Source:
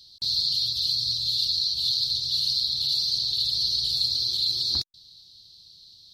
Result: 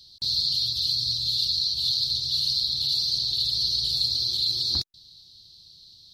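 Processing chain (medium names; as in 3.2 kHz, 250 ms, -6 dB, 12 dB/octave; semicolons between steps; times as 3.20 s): bass shelf 470 Hz +3.5 dB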